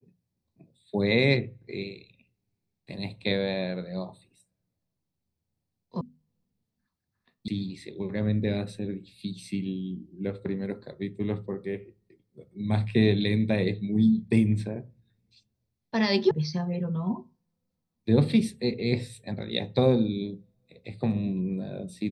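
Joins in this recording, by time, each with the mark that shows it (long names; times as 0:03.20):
0:06.01: cut off before it has died away
0:07.48: cut off before it has died away
0:16.31: cut off before it has died away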